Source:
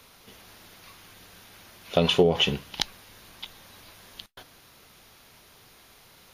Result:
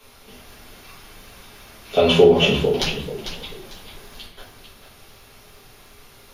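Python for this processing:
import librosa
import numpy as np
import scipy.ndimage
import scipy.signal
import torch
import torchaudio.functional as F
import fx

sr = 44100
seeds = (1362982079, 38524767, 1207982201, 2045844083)

p1 = x + fx.echo_single(x, sr, ms=447, db=-10.5, dry=0)
p2 = fx.room_shoebox(p1, sr, seeds[0], volume_m3=43.0, walls='mixed', distance_m=1.7)
p3 = fx.echo_warbled(p2, sr, ms=444, feedback_pct=33, rate_hz=2.8, cents=178, wet_db=-13.5)
y = F.gain(torch.from_numpy(p3), -4.0).numpy()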